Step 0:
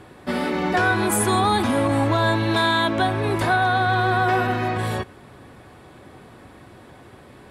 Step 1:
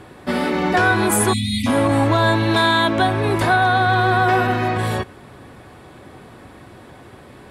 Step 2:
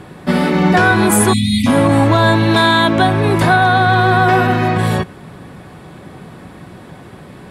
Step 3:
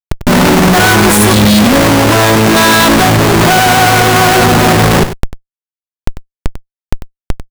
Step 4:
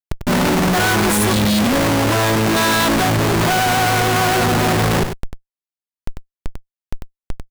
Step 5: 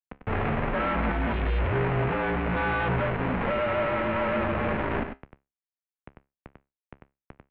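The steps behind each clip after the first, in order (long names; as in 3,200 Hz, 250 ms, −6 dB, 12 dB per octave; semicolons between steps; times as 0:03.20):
time-frequency box erased 0:01.33–0:01.67, 280–1,900 Hz; level +3.5 dB
parametric band 170 Hz +11 dB 0.48 octaves; level +4 dB
comparator with hysteresis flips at −24.5 dBFS; on a send: single-tap delay 96 ms −11.5 dB; on the sum: level +7 dB
soft clipping −8.5 dBFS, distortion −16 dB; level −5 dB
tuned comb filter 69 Hz, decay 0.23 s, harmonics all, mix 50%; single-sideband voice off tune −150 Hz 190–2,700 Hz; level −6 dB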